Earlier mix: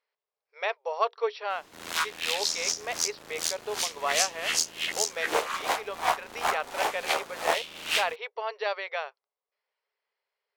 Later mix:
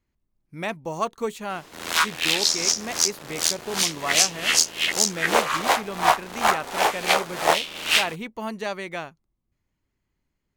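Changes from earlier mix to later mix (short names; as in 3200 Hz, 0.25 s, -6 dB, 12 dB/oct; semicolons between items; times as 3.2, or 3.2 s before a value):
speech: remove brick-wall FIR band-pass 400–5800 Hz; background +7.5 dB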